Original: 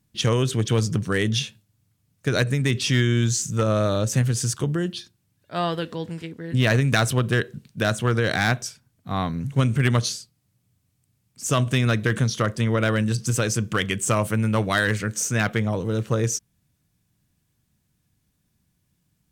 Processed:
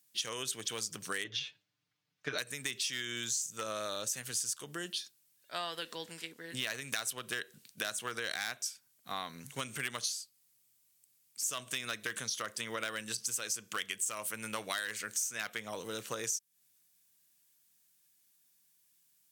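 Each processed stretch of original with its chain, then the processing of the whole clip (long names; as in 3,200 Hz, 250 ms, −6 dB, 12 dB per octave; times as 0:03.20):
0:01.24–0:02.38: high-frequency loss of the air 240 metres + comb filter 6.7 ms, depth 90%
whole clip: high-pass filter 280 Hz 6 dB per octave; spectral tilt +4 dB per octave; downward compressor 4 to 1, threshold −28 dBFS; level −6.5 dB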